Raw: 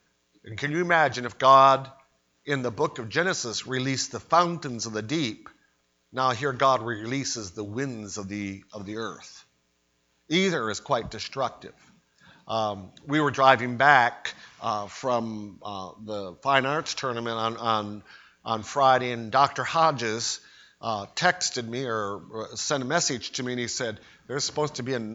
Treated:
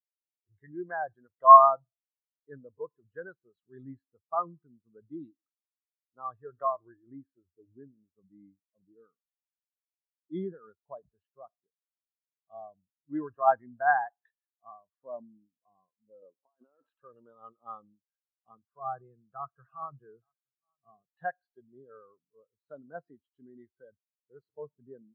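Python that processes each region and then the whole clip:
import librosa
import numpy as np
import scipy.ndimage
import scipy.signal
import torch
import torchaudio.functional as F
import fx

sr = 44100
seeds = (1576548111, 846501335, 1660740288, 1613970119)

y = fx.chain(x, sr, fx.highpass(hz=230.0, slope=12),
    fx.high_shelf(hz=2200.0, db=-5.0),
    fx.over_compress(threshold_db=-34.0, ratio=-1.0), at=(16.22, 16.95))
y = fx.chain(y, sr, fx.cabinet(low_hz=120.0, low_slope=12, high_hz=3300.0, hz=(130.0, 260.0, 590.0, 880.0, 2000.0), db=(7, -4, -7, -7, -7)),
    fx.echo_single(ms=868, db=-19.0), at=(18.51, 21.17))
y = scipy.signal.sosfilt(scipy.signal.butter(4, 3200.0, 'lowpass', fs=sr, output='sos'), y)
y = fx.notch(y, sr, hz=2300.0, q=5.1)
y = fx.spectral_expand(y, sr, expansion=2.5)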